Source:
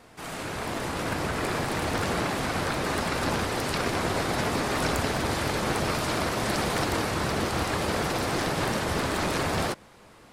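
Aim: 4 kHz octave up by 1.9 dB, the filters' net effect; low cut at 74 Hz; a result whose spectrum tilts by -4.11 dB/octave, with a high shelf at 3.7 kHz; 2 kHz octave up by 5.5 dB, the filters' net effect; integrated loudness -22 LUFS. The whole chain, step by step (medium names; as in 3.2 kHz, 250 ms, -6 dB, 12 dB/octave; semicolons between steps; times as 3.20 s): high-pass 74 Hz; peaking EQ 2 kHz +7.5 dB; treble shelf 3.7 kHz -5.5 dB; peaking EQ 4 kHz +3.5 dB; trim +3.5 dB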